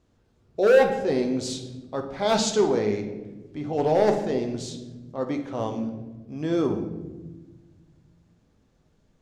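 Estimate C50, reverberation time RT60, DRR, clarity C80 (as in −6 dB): 8.0 dB, 1.2 s, 4.0 dB, 10.5 dB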